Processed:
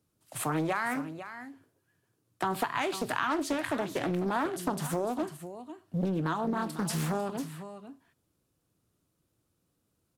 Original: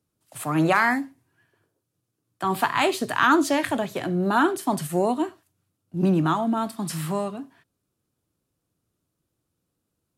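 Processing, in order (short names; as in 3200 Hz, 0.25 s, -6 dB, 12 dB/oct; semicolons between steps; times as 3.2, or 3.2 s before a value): compressor 6:1, threshold -29 dBFS, peak gain reduction 14 dB; on a send: echo 0.499 s -12 dB; on the sum: Doppler distortion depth 0.7 ms; gain +1.5 dB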